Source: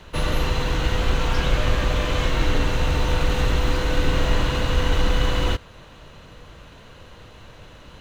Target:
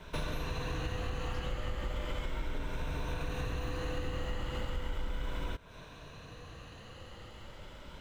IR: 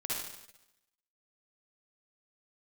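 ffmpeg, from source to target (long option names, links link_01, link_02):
-af "afftfilt=real='re*pow(10,7/40*sin(2*PI*(1.6*log(max(b,1)*sr/1024/100)/log(2)-(0.36)*(pts-256)/sr)))':imag='im*pow(10,7/40*sin(2*PI*(1.6*log(max(b,1)*sr/1024/100)/log(2)-(0.36)*(pts-256)/sr)))':win_size=1024:overlap=0.75,adynamicequalizer=threshold=0.00562:dfrequency=4800:dqfactor=1.1:tfrequency=4800:tqfactor=1.1:attack=5:release=100:ratio=0.375:range=2.5:mode=cutabove:tftype=bell,acompressor=threshold=-27dB:ratio=6,volume=-5.5dB"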